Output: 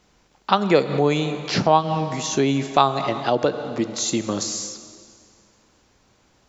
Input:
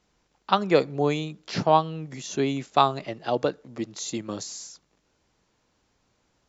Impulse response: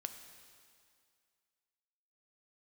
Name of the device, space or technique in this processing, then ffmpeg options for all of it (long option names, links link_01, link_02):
ducked reverb: -filter_complex "[0:a]asplit=3[link_01][link_02][link_03];[1:a]atrim=start_sample=2205[link_04];[link_02][link_04]afir=irnorm=-1:irlink=0[link_05];[link_03]apad=whole_len=285838[link_06];[link_05][link_06]sidechaincompress=threshold=-28dB:ratio=8:attack=11:release=149,volume=9dB[link_07];[link_01][link_07]amix=inputs=2:normalize=0"